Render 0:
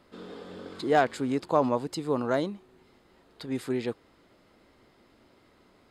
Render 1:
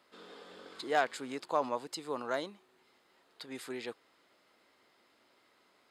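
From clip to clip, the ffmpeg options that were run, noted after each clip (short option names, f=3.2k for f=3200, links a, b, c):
-af "highpass=f=1k:p=1,volume=-2dB"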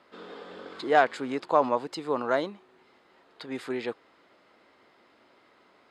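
-af "aemphasis=mode=reproduction:type=75fm,volume=8.5dB"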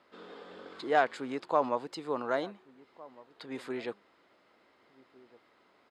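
-filter_complex "[0:a]asplit=2[a][b];[b]adelay=1458,volume=-21dB,highshelf=f=4k:g=-32.8[c];[a][c]amix=inputs=2:normalize=0,volume=-5dB"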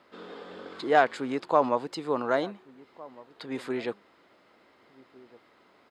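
-af "equalizer=f=120:w=0.45:g=2.5,volume=4.5dB"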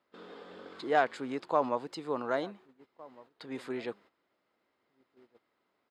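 -af "agate=range=-12dB:threshold=-50dB:ratio=16:detection=peak,volume=-5.5dB"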